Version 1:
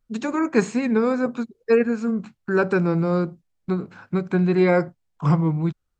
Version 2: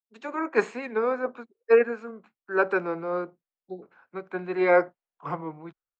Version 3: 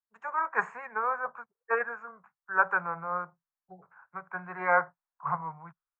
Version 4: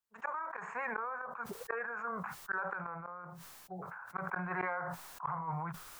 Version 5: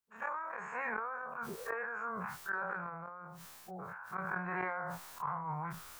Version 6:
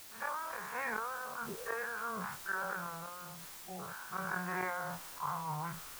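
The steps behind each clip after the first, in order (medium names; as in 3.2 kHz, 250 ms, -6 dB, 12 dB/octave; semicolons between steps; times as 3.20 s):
three-band isolator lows -24 dB, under 360 Hz, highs -17 dB, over 3.1 kHz; spectral replace 3.52–3.80 s, 870–3400 Hz before; three bands expanded up and down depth 70%; trim -1.5 dB
FFT filter 170 Hz 0 dB, 270 Hz -25 dB, 980 Hz +8 dB, 1.7 kHz +4 dB, 4 kHz -26 dB, 6.9 kHz -9 dB; trim -3 dB
compression 12:1, threshold -28 dBFS, peak gain reduction 11.5 dB; inverted gate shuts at -27 dBFS, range -30 dB; decay stretcher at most 20 dB/s; trim +3.5 dB
every event in the spectrogram widened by 60 ms; trim -4 dB
added noise white -52 dBFS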